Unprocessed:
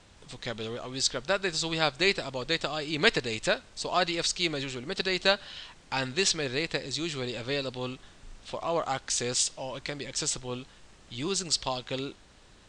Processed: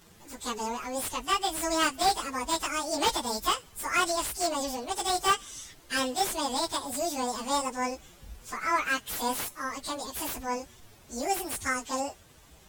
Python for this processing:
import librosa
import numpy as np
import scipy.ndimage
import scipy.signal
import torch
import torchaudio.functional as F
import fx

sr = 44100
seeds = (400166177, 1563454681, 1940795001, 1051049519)

y = fx.pitch_bins(x, sr, semitones=12.0)
y = fx.slew_limit(y, sr, full_power_hz=110.0)
y = F.gain(torch.from_numpy(y), 5.5).numpy()